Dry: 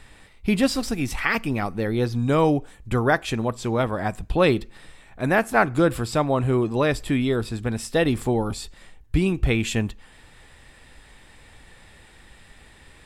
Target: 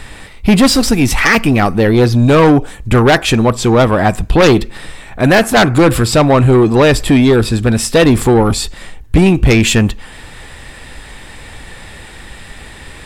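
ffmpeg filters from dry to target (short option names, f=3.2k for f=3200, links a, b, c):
-af "aeval=exprs='0.596*sin(PI/2*2.82*val(0)/0.596)':c=same,acontrast=32,volume=-1.5dB"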